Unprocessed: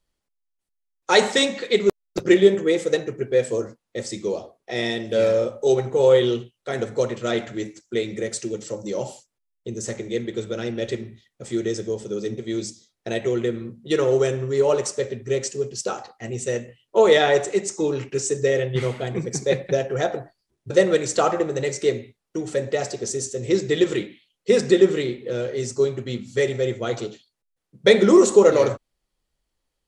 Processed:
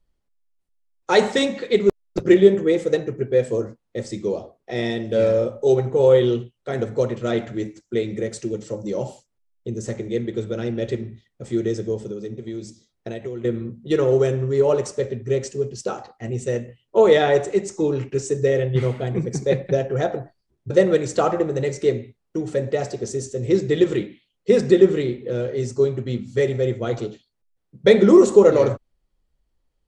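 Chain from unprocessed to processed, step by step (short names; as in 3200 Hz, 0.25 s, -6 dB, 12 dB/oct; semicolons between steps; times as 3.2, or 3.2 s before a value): tilt -2 dB/oct; 12.07–13.45 compressor 6:1, threshold -27 dBFS, peak gain reduction 11 dB; gain -1 dB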